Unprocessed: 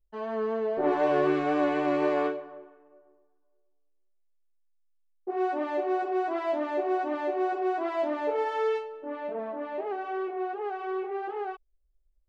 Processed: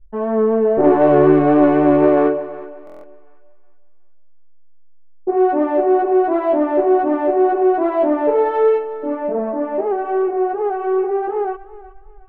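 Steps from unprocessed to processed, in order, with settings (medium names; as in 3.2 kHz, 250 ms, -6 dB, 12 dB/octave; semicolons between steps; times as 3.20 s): local Wiener filter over 9 samples; tilt EQ -3 dB/octave; in parallel at -4 dB: saturation -19 dBFS, distortion -15 dB; on the sum: distance through air 190 m; thinning echo 366 ms, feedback 36%, high-pass 430 Hz, level -16 dB; buffer glitch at 2.85 s, samples 1024, times 7; trim +7 dB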